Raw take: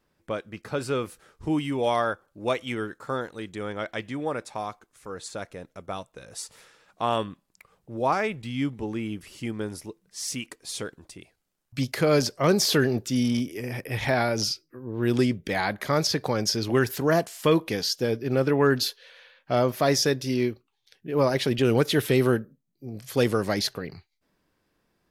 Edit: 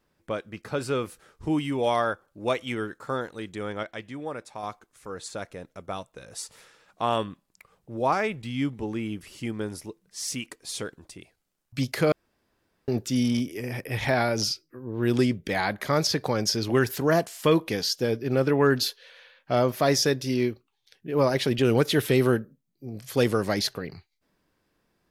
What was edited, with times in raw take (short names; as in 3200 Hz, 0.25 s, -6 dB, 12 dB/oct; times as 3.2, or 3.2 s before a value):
3.83–4.63 gain -5 dB
12.12–12.88 room tone